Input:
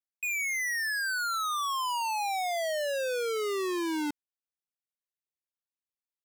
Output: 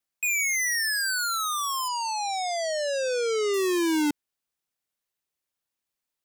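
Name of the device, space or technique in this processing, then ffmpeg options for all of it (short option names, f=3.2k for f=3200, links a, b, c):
one-band saturation: -filter_complex "[0:a]acrossover=split=350|3200[a][b][c];[b]asoftclip=type=tanh:threshold=-38dB[d];[a][d][c]amix=inputs=3:normalize=0,asettb=1/sr,asplit=3[e][f][g];[e]atrim=end=1.884[h];[f]atrim=start=1.88:end=3.54,asetpts=PTS-STARTPTS,afade=t=in:d=0.004:c=qsin,afade=t=out:st=1.656:d=0.004:c=qsin,lowpass=f=7.6k:w=0.5412,lowpass=f=7.6k:w=1.3066[i];[g]atrim=start=3.536[j];[h][i]acrossfade=d=0.004:c1=hsin:c2=qsin[k];[k][j]acrossfade=d=0.004:c1=qsin:c2=hsin,volume=9dB"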